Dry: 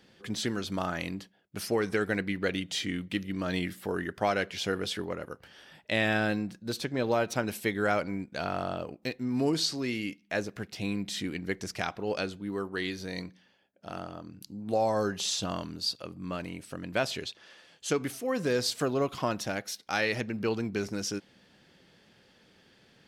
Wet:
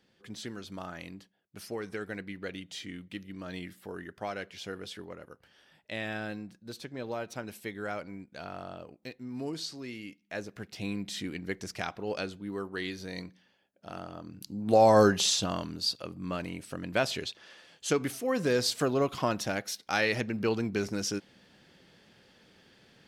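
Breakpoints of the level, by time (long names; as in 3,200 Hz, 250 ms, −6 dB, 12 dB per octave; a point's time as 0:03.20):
0:10.10 −9 dB
0:10.79 −2.5 dB
0:14.02 −2.5 dB
0:15.02 +9 dB
0:15.50 +1 dB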